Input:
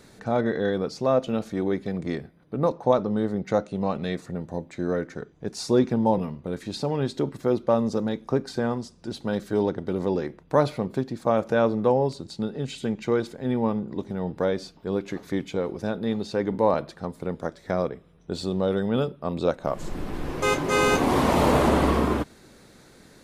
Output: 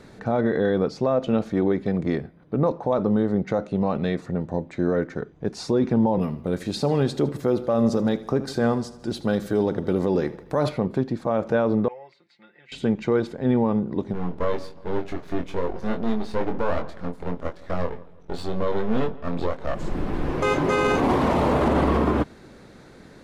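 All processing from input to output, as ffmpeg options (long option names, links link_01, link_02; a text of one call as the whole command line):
ffmpeg -i in.wav -filter_complex "[0:a]asettb=1/sr,asplit=3[link_01][link_02][link_03];[link_01]atrim=end=6.204[link_04];[link_02]atrim=start=6.2:end=10.69,asetpts=PTS-STARTPTS,afade=type=in:duration=0.004:curve=qsin,afade=type=out:start_time=4.486:duration=0.004:curve=qsin,aemphasis=mode=production:type=50fm,bandreject=frequency=930:width=18,aecho=1:1:78|156|234|312|390:0.133|0.0733|0.0403|0.0222|0.0122,atrim=end_sample=198009[link_05];[link_03]atrim=start=10.686[link_06];[link_04][link_05]acrossfade=duration=0.004:curve1=hsin:curve2=qsin[link_07];[link_07][link_06]acrossfade=duration=0.004:curve1=qsin:curve2=hsin,asettb=1/sr,asplit=3[link_08][link_09][link_10];[link_08]atrim=end=11.884[link_11];[link_09]atrim=start=11.88:end=12.72,asetpts=PTS-STARTPTS,afade=type=in:duration=0.004:curve=qsin,afade=type=out:start_time=0.836:duration=0.004:curve=qsin,bandpass=frequency=2100:width_type=q:width=7.1,aecho=1:1:5.7:0.9,atrim=end_sample=37044[link_12];[link_10]atrim=start=12.716[link_13];[link_11][link_12]acrossfade=duration=0.004:curve1=hsin:curve2=qsin[link_14];[link_14][link_13]acrossfade=duration=0.004:curve1=qsin:curve2=hsin,asettb=1/sr,asplit=3[link_15][link_16][link_17];[link_15]atrim=end=14.134[link_18];[link_16]atrim=start=14.13:end=19.75,asetpts=PTS-STARTPTS,afade=type=in:duration=0.004:curve=qsin,afade=type=out:start_time=5.616:duration=0.004:curve=qsin,aeval=exprs='max(val(0),0)':channel_layout=same,asplit=2[link_19][link_20];[link_20]adelay=23,volume=-5dB[link_21];[link_19][link_21]amix=inputs=2:normalize=0,atrim=end_sample=247842,asplit=2[link_22][link_23];[link_23]adelay=166,lowpass=frequency=2500:poles=1,volume=-21dB,asplit=2[link_24][link_25];[link_25]adelay=166,lowpass=frequency=2500:poles=1,volume=0.36,asplit=2[link_26][link_27];[link_27]adelay=166,lowpass=frequency=2500:poles=1,volume=0.36[link_28];[link_22][link_24][link_26][link_28]amix=inputs=4:normalize=0,atrim=end_sample=247842[link_29];[link_17]atrim=start=19.746[link_30];[link_18][link_29]acrossfade=duration=0.004:curve1=hsin:curve2=qsin[link_31];[link_31][link_30]acrossfade=duration=0.004:curve1=qsin:curve2=hsin,alimiter=limit=-17dB:level=0:latency=1:release=46,lowpass=frequency=2200:poles=1,volume=5.5dB" out.wav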